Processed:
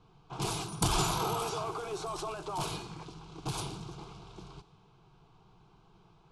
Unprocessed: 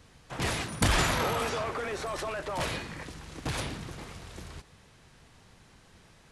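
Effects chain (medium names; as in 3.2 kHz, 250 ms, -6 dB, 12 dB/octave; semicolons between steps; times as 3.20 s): level-controlled noise filter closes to 2.3 kHz, open at -29 dBFS; static phaser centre 370 Hz, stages 8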